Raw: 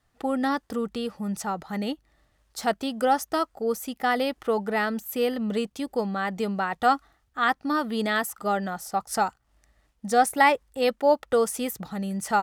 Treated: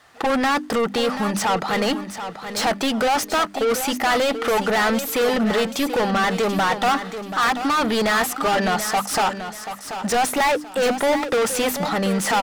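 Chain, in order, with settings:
mains-hum notches 50/100/150/200/250/300 Hz
mid-hump overdrive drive 37 dB, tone 4,200 Hz, clips at −5 dBFS
repeating echo 734 ms, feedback 30%, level −10 dB
level −7 dB

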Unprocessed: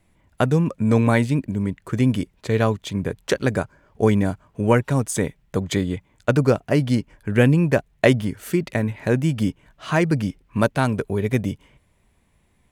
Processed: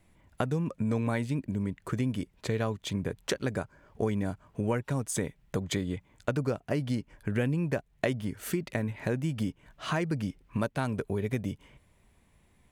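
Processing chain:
downward compressor 3 to 1, threshold −28 dBFS, peak gain reduction 13.5 dB
level −1.5 dB

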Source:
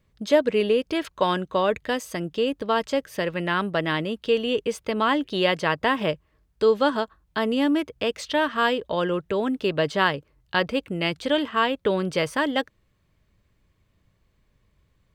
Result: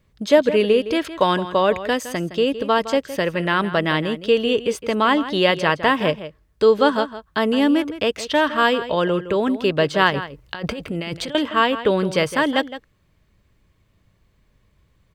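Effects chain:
0:10.10–0:11.35: compressor whose output falls as the input rises −32 dBFS, ratio −1
slap from a distant wall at 28 metres, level −13 dB
level +4.5 dB

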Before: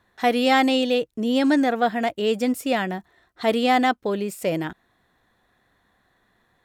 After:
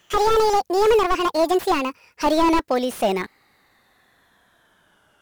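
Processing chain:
gliding playback speed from 174% → 81%
spectral tilt +1.5 dB per octave
slew-rate limiting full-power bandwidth 83 Hz
level +5.5 dB

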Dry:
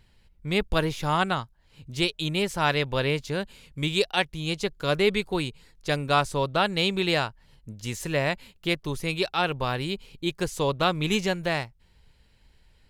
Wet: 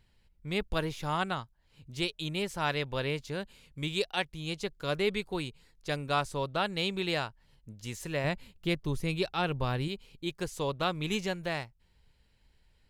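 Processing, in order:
0:08.24–0:09.88: low-shelf EQ 310 Hz +8.5 dB
level −7 dB

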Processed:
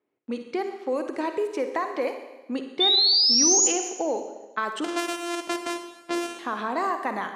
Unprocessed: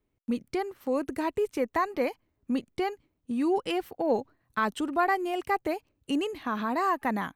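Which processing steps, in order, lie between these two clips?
0:04.84–0:06.39: samples sorted by size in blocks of 128 samples
Chebyshev band-pass filter 370–9,700 Hz, order 2
low-pass that shuts in the quiet parts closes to 2,600 Hz, open at −24 dBFS
downward compressor, threshold −27 dBFS, peak gain reduction 8 dB
0:02.80–0:03.68: sound drawn into the spectrogram rise 3,500–7,100 Hz −24 dBFS
convolution reverb RT60 1.1 s, pre-delay 43 ms, DRR 6.5 dB
level +4 dB

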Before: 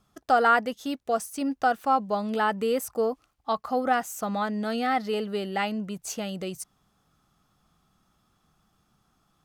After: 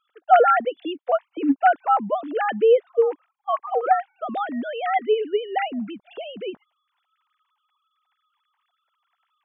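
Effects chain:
three sine waves on the formant tracks
level +5 dB

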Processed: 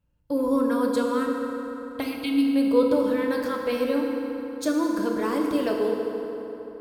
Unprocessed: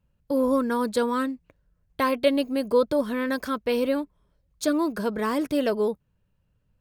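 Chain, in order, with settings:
time-frequency box erased 0:02.02–0:02.55, 310–2,000 Hz
feedback delay network reverb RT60 3.7 s, high-frequency decay 0.6×, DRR 0 dB
level −3.5 dB

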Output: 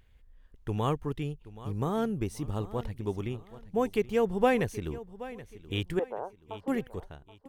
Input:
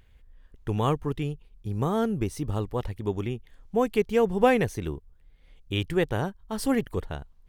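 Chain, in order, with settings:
fade-out on the ending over 0.92 s
0:05.99–0:06.68: Chebyshev band-pass filter 460–1,000 Hz, order 2
on a send: repeating echo 777 ms, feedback 35%, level −16.5 dB
on the sum: level −4 dB

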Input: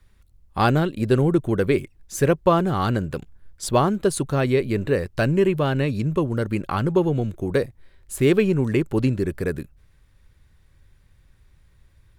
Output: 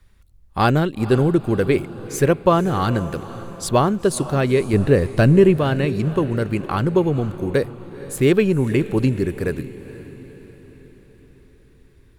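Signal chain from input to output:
0:04.73–0:05.56: low-shelf EQ 430 Hz +7 dB
on a send: feedback delay with all-pass diffusion 489 ms, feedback 52%, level −15.5 dB
on the sum: level +2 dB

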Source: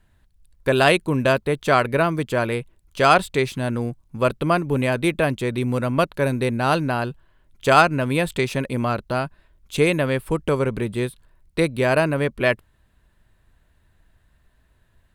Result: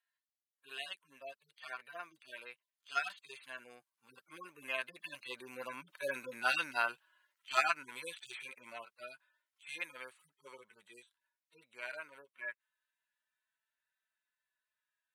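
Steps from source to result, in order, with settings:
harmonic-percussive split with one part muted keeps harmonic
source passing by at 0:06.34, 10 m/s, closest 8 metres
Chebyshev high-pass filter 1,600 Hz, order 2
level +4 dB

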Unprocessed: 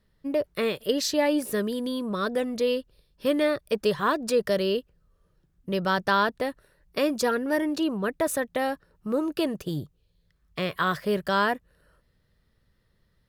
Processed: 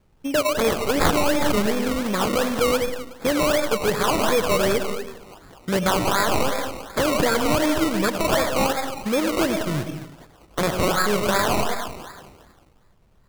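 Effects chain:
stylus tracing distortion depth 0.2 ms
comb and all-pass reverb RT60 0.79 s, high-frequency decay 0.9×, pre-delay 60 ms, DRR 5 dB
dynamic equaliser 310 Hz, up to −4 dB, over −34 dBFS, Q 0.97
brickwall limiter −19 dBFS, peak gain reduction 8.5 dB
high-shelf EQ 6,000 Hz +8 dB
echo through a band-pass that steps 203 ms, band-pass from 810 Hz, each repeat 0.7 octaves, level −9 dB
sample-and-hold swept by an LFO 21×, swing 60% 2.7 Hz
level +7 dB

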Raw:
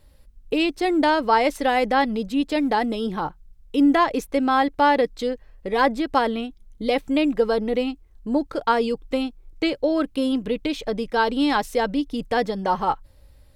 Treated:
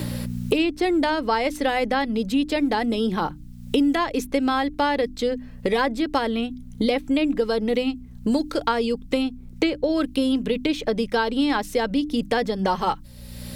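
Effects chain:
mains hum 60 Hz, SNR 27 dB
parametric band 840 Hz −4.5 dB 1.8 octaves
mains-hum notches 50/100/150/200/250/300 Hz
multiband upward and downward compressor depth 100%
level +1 dB

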